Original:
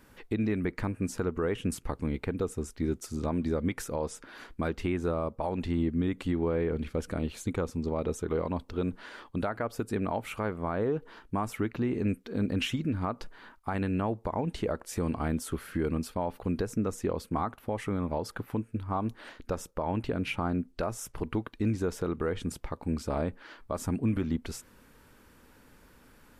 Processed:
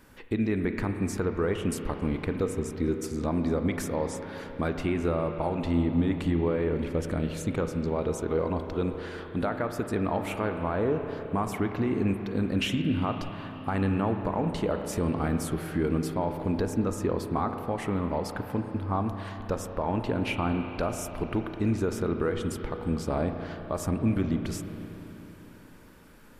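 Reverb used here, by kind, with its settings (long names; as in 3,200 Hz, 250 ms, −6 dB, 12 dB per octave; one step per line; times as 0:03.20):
spring reverb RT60 3.8 s, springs 31/35 ms, chirp 25 ms, DRR 5.5 dB
level +2 dB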